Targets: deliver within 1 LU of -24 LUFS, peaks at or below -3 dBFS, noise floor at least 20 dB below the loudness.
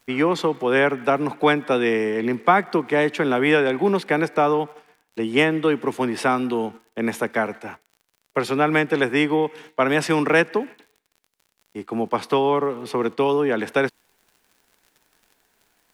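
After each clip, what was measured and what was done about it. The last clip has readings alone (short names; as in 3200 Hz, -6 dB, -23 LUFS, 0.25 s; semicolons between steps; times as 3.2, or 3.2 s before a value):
ticks 56/s; loudness -21.5 LUFS; peak -3.0 dBFS; loudness target -24.0 LUFS
-> de-click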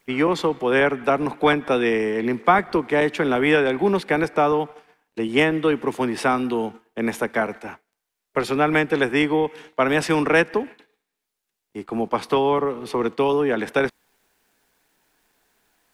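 ticks 0.31/s; loudness -21.5 LUFS; peak -3.0 dBFS; loudness target -24.0 LUFS
-> gain -2.5 dB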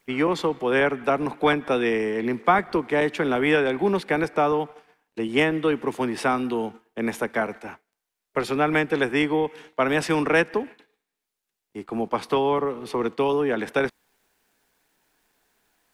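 loudness -24.0 LUFS; peak -5.5 dBFS; noise floor -84 dBFS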